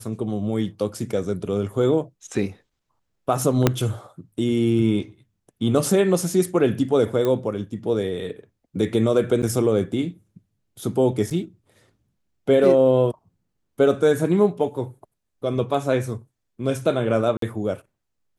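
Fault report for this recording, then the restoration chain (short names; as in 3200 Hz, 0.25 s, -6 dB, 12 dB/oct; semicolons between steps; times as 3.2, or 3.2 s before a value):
3.67 pop -2 dBFS
7.25 pop -12 dBFS
9.42–9.43 gap 7.2 ms
11.3–11.31 gap 6.4 ms
17.37–17.42 gap 53 ms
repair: de-click; interpolate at 9.42, 7.2 ms; interpolate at 11.3, 6.4 ms; interpolate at 17.37, 53 ms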